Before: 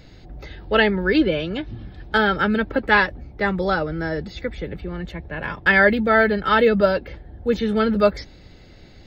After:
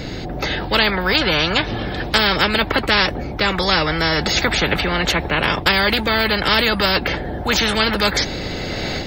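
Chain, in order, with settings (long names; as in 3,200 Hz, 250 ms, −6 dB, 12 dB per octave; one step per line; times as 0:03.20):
automatic gain control gain up to 10 dB
parametric band 130 Hz +6 dB 2.4 octaves
every bin compressed towards the loudest bin 4 to 1
level −2.5 dB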